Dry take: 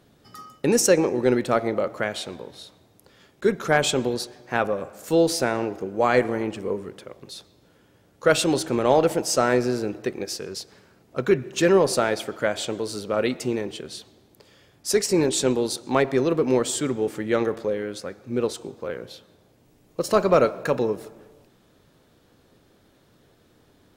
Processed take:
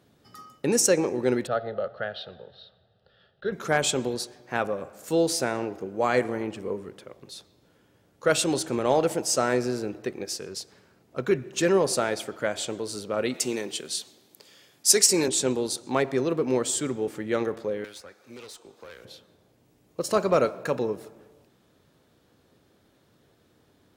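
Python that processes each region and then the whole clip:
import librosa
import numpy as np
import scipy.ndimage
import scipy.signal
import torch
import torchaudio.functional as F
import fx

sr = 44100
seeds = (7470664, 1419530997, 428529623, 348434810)

y = fx.chain(x, sr, fx.lowpass(hz=4300.0, slope=24),
    fx.fixed_phaser(hz=1500.0, stages=8), at=(1.47, 3.52))
y = fx.chain(y, sr, fx.highpass(hz=160.0, slope=12),
    fx.high_shelf(hz=2300.0, db=10.5), at=(13.34, 15.28))
y = fx.chain(y, sr, fx.highpass(hz=1300.0, slope=6),
    fx.tube_stage(drive_db=34.0, bias=0.45),
    fx.band_squash(depth_pct=100), at=(17.84, 19.05))
y = scipy.signal.sosfilt(scipy.signal.butter(2, 50.0, 'highpass', fs=sr, output='sos'), y)
y = fx.dynamic_eq(y, sr, hz=8000.0, q=0.94, threshold_db=-43.0, ratio=4.0, max_db=5)
y = F.gain(torch.from_numpy(y), -4.0).numpy()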